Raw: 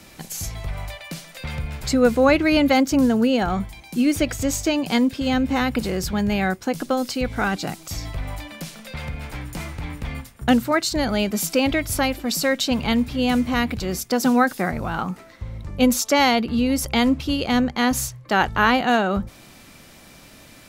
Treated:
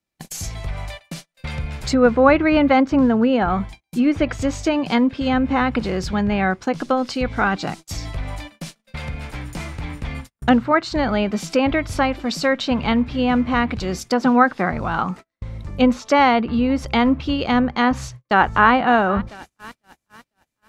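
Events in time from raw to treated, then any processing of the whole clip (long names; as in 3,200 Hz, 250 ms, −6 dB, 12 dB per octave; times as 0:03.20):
0:17.91–0:18.71: delay throw 500 ms, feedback 80%, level −18 dB
whole clip: noise gate −35 dBFS, range −39 dB; treble cut that deepens with the level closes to 2,400 Hz, closed at −16.5 dBFS; dynamic equaliser 1,100 Hz, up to +5 dB, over −36 dBFS, Q 1.5; level +1.5 dB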